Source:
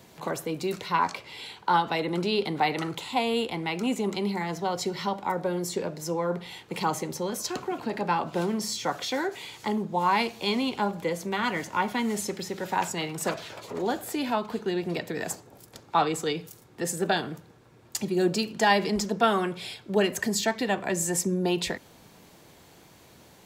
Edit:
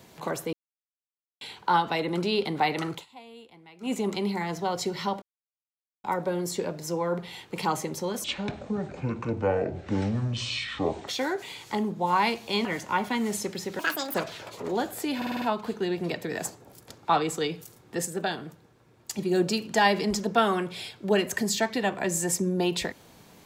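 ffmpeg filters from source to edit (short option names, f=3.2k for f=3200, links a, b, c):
-filter_complex "[0:a]asplit=18[a][b][c][d][e][f][g][h][i][j][k][l][m][n][o][p][q][r];[a]atrim=end=0.53,asetpts=PTS-STARTPTS,afade=t=out:st=0.526:d=0.004:c=hsin[s];[b]atrim=start=0.53:end=1.41,asetpts=PTS-STARTPTS,volume=0[t];[c]atrim=start=1.41:end=3.06,asetpts=PTS-STARTPTS,afade=t=in:d=0.004:c=hsin,afade=t=out:st=1.52:d=0.13:silence=0.0891251[u];[d]atrim=start=3.06:end=3.8,asetpts=PTS-STARTPTS,volume=-21dB[v];[e]atrim=start=3.8:end=5.22,asetpts=PTS-STARTPTS,afade=t=in:d=0.13:silence=0.0891251,afade=t=out:st=1.416:d=0.004:c=hsin,apad=pad_dur=0.82[w];[f]atrim=start=5.22:end=7.424,asetpts=PTS-STARTPTS,afade=t=in:d=0.004:c=hsin[x];[g]atrim=start=7.42:end=9.01,asetpts=PTS-STARTPTS,asetrate=24696,aresample=44100,atrim=end_sample=125212,asetpts=PTS-STARTPTS[y];[h]atrim=start=9.006:end=10.582[z];[i]atrim=start=11.488:end=12.634[aa];[j]atrim=start=12.63:end=13.25,asetpts=PTS-STARTPTS,asetrate=76734,aresample=44100[ab];[k]atrim=start=13.246:end=14.322[ac];[l]atrim=start=14.268:end=14.322[ad];[m]atrim=start=14.268:end=14.322[ae];[n]atrim=start=14.268:end=14.322[af];[o]atrim=start=14.268:end=14.322[ag];[p]atrim=start=14.268:end=16.912[ah];[q]atrim=start=16.908:end=18.042,asetpts=PTS-STARTPTS,volume=-4dB[ai];[r]atrim=start=18.038[aj];[s][t][u][v][w][x]concat=n=6:v=0:a=1[ak];[ak][y]acrossfade=d=0.004:c1=hsin:c2=hsin[al];[al][z]acrossfade=d=0.004:c1=hsin:c2=hsin[am];[am][aa]acrossfade=d=0.004:c1=hsin:c2=hsin[an];[an][ab]acrossfade=d=0.004:c1=hsin:c2=hsin[ao];[ao][ac]acrossfade=d=0.004:c1=hsin:c2=hsin[ap];[ap][ad]acrossfade=d=0.004:c1=hsin:c2=hsin[aq];[aq][ae]acrossfade=d=0.004:c1=hsin:c2=hsin[ar];[ar][af]acrossfade=d=0.004:c1=hsin:c2=hsin[as];[as][ag]acrossfade=d=0.004:c1=hsin:c2=hsin[at];[at][ah]acrossfade=d=0.004:c1=hsin:c2=hsin[au];[au][ai]acrossfade=d=0.004:c1=hsin:c2=hsin[av];[av][aj]acrossfade=d=0.004:c1=hsin:c2=hsin"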